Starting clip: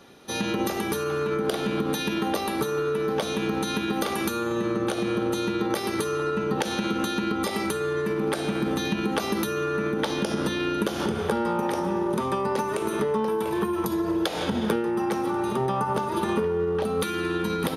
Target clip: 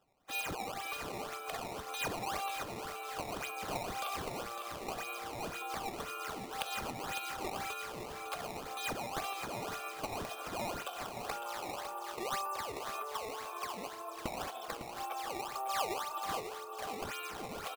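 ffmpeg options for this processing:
-filter_complex "[0:a]highpass=330,afftdn=nr=12:nf=-38,asplit=3[s0][s1][s2];[s0]bandpass=f=730:t=q:w=8,volume=1[s3];[s1]bandpass=f=1090:t=q:w=8,volume=0.501[s4];[s2]bandpass=f=2440:t=q:w=8,volume=0.355[s5];[s3][s4][s5]amix=inputs=3:normalize=0,aderivative,acrusher=samples=16:mix=1:aa=0.000001:lfo=1:lforange=25.6:lforate=1.9,aecho=1:1:555|1110|1665|2220:0.376|0.124|0.0409|0.0135,volume=7.5"

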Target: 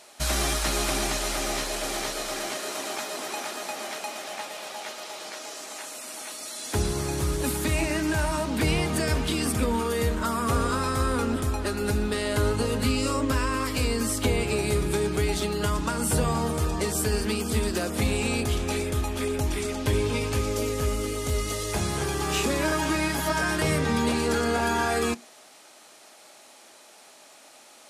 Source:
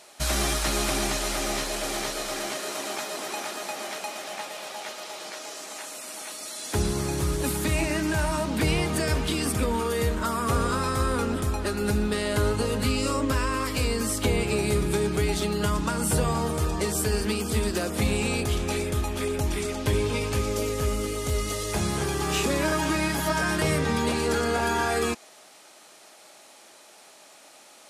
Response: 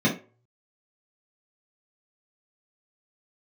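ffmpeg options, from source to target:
-filter_complex "[0:a]asplit=2[s0][s1];[1:a]atrim=start_sample=2205[s2];[s1][s2]afir=irnorm=-1:irlink=0,volume=0.015[s3];[s0][s3]amix=inputs=2:normalize=0"

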